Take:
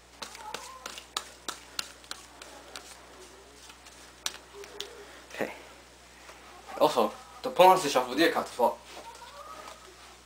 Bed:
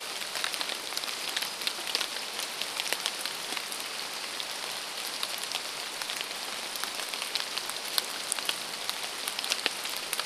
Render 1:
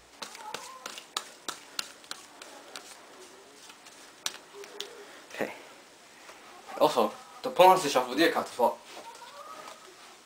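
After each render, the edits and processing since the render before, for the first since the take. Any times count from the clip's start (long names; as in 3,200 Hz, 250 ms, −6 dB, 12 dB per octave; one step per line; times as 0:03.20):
hum removal 60 Hz, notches 3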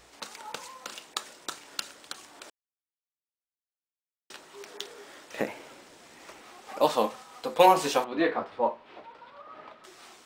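0:02.50–0:04.30: silence
0:05.34–0:06.42: low-shelf EQ 430 Hz +5.5 dB
0:08.04–0:09.84: high-frequency loss of the air 380 metres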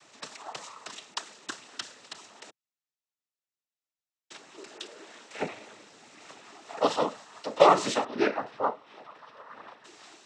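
cochlear-implant simulation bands 12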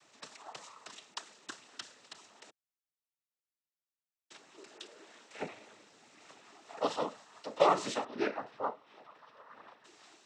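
level −7.5 dB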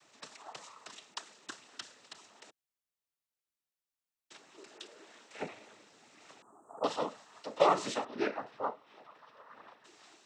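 0:06.42–0:06.84: elliptic band-stop filter 1,200–8,400 Hz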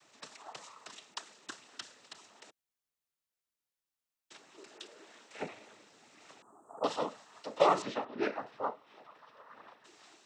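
0:07.82–0:08.23: high-frequency loss of the air 200 metres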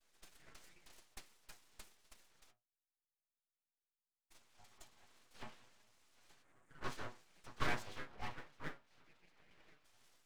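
stiff-string resonator 99 Hz, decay 0.29 s, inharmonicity 0.008
full-wave rectification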